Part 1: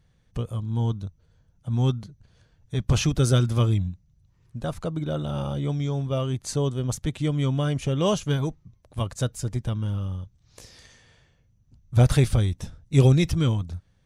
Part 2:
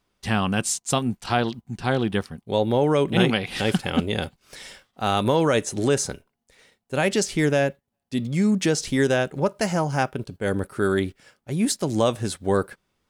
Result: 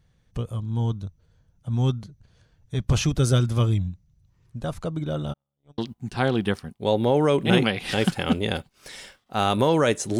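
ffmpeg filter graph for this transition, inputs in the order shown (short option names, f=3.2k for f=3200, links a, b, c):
-filter_complex "[0:a]asplit=3[a][b][c];[a]afade=t=out:st=5.32:d=0.02[d];[b]agate=range=-57dB:threshold=-22dB:ratio=16:release=100:detection=peak,afade=t=in:st=5.32:d=0.02,afade=t=out:st=5.78:d=0.02[e];[c]afade=t=in:st=5.78:d=0.02[f];[d][e][f]amix=inputs=3:normalize=0,apad=whole_dur=10.19,atrim=end=10.19,atrim=end=5.782[g];[1:a]atrim=start=1.448:end=5.86[h];[g][h]acrossfade=d=0.004:c1=hsin:c2=hsin"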